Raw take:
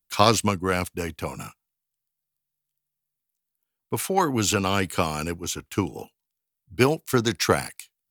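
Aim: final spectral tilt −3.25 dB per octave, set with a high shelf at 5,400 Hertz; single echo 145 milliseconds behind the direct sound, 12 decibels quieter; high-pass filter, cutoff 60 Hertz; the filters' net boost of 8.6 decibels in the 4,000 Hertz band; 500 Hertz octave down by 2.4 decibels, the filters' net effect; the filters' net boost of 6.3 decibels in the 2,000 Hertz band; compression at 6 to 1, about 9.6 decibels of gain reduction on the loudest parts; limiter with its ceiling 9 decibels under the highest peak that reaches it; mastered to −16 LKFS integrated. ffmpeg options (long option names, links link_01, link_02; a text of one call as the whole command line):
ffmpeg -i in.wav -af "highpass=60,equalizer=frequency=500:width_type=o:gain=-3.5,equalizer=frequency=2000:width_type=o:gain=5.5,equalizer=frequency=4000:width_type=o:gain=5.5,highshelf=frequency=5400:gain=9,acompressor=threshold=-21dB:ratio=6,alimiter=limit=-15.5dB:level=0:latency=1,aecho=1:1:145:0.251,volume=12.5dB" out.wav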